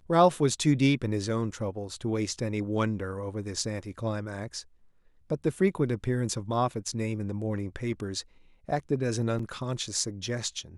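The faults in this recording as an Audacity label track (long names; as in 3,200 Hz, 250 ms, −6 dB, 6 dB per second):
9.390000	9.390000	drop-out 4.2 ms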